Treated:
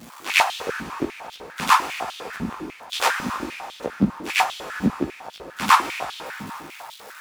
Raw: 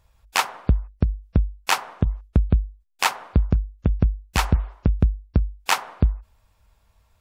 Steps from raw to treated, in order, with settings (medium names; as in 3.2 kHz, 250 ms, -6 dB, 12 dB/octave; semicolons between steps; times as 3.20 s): jump at every zero crossing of -34 dBFS; chorus voices 2, 1.3 Hz, delay 17 ms, depth 3 ms; harmony voices +5 st -6 dB; reverse echo 94 ms -9.5 dB; on a send at -7 dB: reverberation RT60 4.9 s, pre-delay 23 ms; on the sum: step-sequenced high-pass 10 Hz 220–3400 Hz